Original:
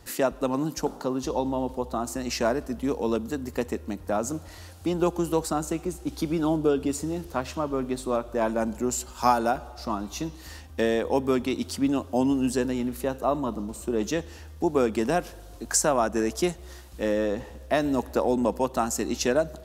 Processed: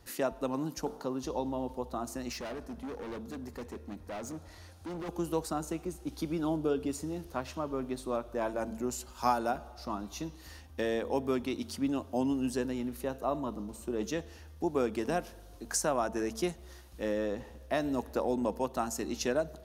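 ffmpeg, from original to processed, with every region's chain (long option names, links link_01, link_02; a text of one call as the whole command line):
ffmpeg -i in.wav -filter_complex "[0:a]asettb=1/sr,asplit=3[link_01][link_02][link_03];[link_01]atrim=end=2.324[link_04];[link_02]atrim=start=2.32:end=5.09,asetpts=PTS-STARTPTS,afade=type=in:duration=0.004:curve=qsin,afade=type=out:start_time=2.766:duration=0.004:curve=qsin,highshelf=frequency=12000:gain=-9,bandreject=frequency=2900:width=16,asoftclip=type=hard:threshold=-30dB[link_05];[link_03]atrim=start=5.086[link_06];[link_04][link_05]acrossfade=duration=0.004:curve1=hsin:curve2=qsin[link_07];[link_07][link_06]acrossfade=duration=0.004:curve1=qsin:curve2=hsin,bandreject=frequency=7600:width=8.6,bandreject=frequency=224.4:width_type=h:width=4,bandreject=frequency=448.8:width_type=h:width=4,bandreject=frequency=673.2:width_type=h:width=4,bandreject=frequency=897.6:width_type=h:width=4,volume=-7dB" out.wav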